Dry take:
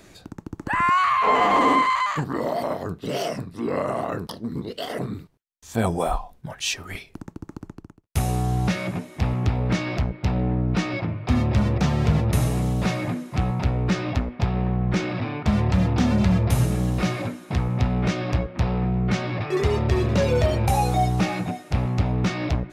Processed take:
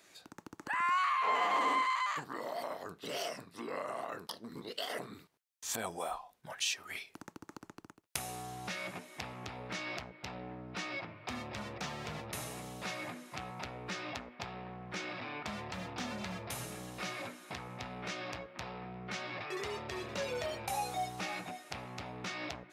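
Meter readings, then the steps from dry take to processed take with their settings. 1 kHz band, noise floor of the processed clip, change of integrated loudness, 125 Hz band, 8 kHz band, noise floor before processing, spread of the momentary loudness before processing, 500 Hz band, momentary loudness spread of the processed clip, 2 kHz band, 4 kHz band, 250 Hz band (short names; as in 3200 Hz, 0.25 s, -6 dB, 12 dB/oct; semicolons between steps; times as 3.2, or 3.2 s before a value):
-12.0 dB, -69 dBFS, -15.0 dB, -27.0 dB, -6.5 dB, -53 dBFS, 12 LU, -15.0 dB, 14 LU, -9.0 dB, -7.5 dB, -21.5 dB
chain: recorder AGC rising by 17 dB/s; HPF 1100 Hz 6 dB/oct; gain -8.5 dB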